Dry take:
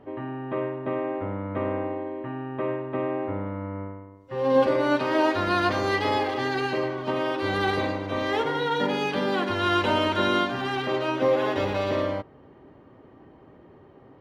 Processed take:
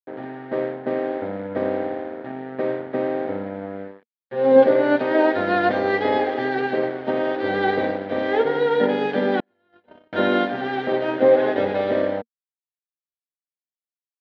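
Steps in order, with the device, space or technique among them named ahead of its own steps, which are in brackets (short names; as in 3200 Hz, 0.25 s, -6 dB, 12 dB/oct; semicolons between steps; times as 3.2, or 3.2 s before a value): blown loudspeaker (crossover distortion -36.5 dBFS; speaker cabinet 150–3600 Hz, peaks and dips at 230 Hz +8 dB, 470 Hz +9 dB, 720 Hz +7 dB, 1100 Hz -9 dB, 1700 Hz +5 dB, 2700 Hz -7 dB); 9.4–10.13 gate -16 dBFS, range -45 dB; gain +3 dB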